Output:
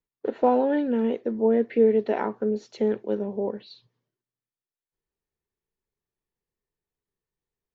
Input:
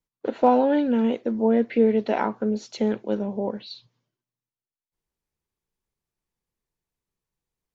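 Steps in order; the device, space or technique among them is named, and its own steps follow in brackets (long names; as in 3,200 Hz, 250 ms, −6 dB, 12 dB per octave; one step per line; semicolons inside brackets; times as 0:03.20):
inside a helmet (high-shelf EQ 4,300 Hz −8 dB; hollow resonant body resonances 410/1,800 Hz, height 7 dB, ringing for 25 ms)
level −4 dB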